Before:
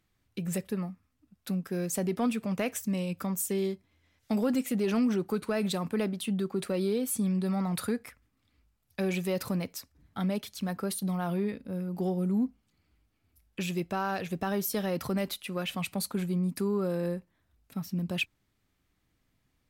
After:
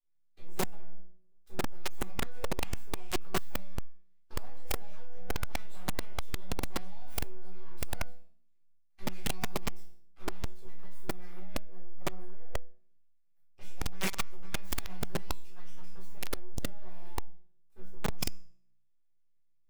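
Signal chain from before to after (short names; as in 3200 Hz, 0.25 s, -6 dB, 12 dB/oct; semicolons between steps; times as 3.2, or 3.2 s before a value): added harmonics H 3 -18 dB, 8 -19 dB, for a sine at -19 dBFS; full-wave rectifier; resonator bank B2 sus4, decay 0.54 s; shoebox room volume 430 m³, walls furnished, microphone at 3.8 m; in parallel at -6 dB: wrapped overs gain 12.5 dB; on the sum: limiter -13.5 dBFS, peak gain reduction 10.5 dB; harmonic-percussive split harmonic -8 dB; gain -3 dB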